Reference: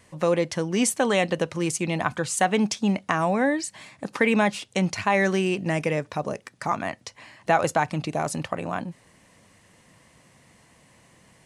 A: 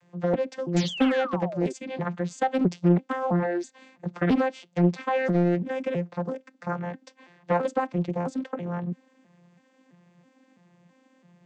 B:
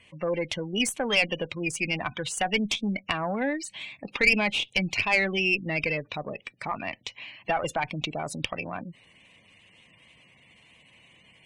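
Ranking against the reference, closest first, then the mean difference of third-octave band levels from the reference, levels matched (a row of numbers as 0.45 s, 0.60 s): B, A; 5.5 dB, 9.5 dB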